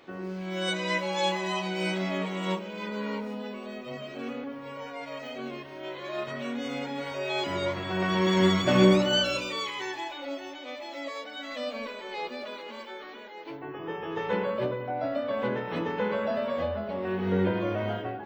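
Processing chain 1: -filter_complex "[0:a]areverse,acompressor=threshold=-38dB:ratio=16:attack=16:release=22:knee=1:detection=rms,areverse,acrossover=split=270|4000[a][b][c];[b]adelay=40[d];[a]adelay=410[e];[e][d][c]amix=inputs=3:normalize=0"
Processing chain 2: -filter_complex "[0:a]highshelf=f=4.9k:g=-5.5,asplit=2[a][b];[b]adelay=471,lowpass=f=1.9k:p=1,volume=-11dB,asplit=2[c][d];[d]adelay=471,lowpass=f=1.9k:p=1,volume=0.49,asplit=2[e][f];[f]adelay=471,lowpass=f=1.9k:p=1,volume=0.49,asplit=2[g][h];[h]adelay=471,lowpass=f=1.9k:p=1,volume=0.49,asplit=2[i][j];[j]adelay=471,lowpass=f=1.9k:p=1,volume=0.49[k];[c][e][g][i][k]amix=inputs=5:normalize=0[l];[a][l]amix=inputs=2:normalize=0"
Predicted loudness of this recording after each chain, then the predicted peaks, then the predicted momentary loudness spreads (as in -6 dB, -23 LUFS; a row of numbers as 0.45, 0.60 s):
-39.5, -30.0 LUFS; -26.0, -8.5 dBFS; 4, 15 LU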